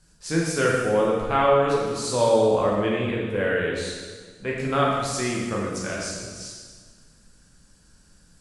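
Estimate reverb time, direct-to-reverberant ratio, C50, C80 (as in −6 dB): 1.6 s, −4.0 dB, 0.0 dB, 2.0 dB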